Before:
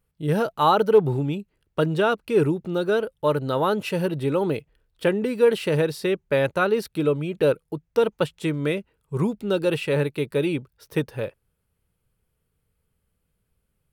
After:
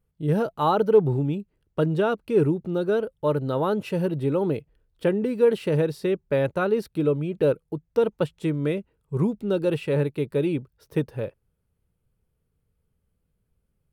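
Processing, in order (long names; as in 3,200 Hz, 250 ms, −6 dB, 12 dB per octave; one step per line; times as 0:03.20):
tilt shelving filter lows +4.5 dB, about 850 Hz
level −3.5 dB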